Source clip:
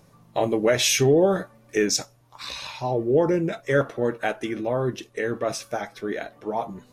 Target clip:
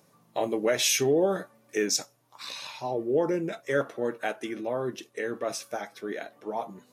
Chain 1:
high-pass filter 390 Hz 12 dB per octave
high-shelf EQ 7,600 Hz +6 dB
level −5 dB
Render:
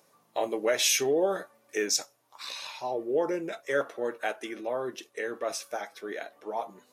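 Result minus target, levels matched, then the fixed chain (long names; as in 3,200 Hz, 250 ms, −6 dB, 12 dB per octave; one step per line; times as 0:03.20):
250 Hz band −3.5 dB
high-pass filter 190 Hz 12 dB per octave
high-shelf EQ 7,600 Hz +6 dB
level −5 dB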